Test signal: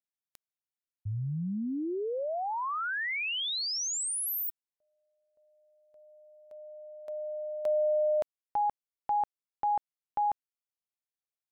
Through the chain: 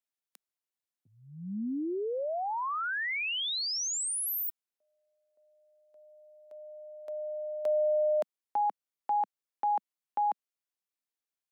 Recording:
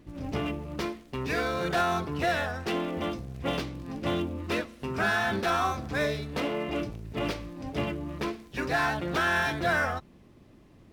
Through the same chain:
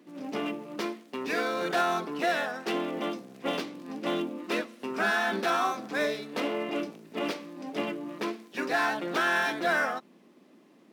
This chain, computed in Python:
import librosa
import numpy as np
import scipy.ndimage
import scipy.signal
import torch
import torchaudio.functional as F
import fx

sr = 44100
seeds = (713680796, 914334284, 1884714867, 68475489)

y = scipy.signal.sosfilt(scipy.signal.butter(6, 200.0, 'highpass', fs=sr, output='sos'), x)